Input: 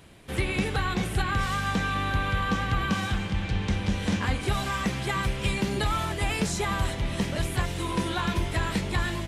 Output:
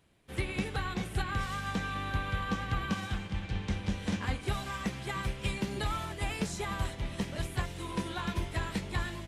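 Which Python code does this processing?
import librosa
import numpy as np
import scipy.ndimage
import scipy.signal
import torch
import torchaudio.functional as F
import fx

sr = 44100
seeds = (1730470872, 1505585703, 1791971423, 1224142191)

y = fx.upward_expand(x, sr, threshold_db=-44.0, expansion=1.5)
y = y * librosa.db_to_amplitude(-5.0)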